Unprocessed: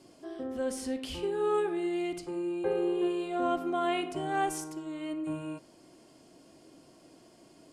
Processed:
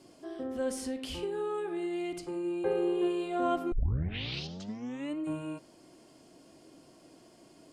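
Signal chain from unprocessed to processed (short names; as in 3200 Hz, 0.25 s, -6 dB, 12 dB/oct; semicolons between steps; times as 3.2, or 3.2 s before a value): 0.86–2.45 compressor, threshold -31 dBFS, peak gain reduction 7.5 dB; 3.72 tape start 1.45 s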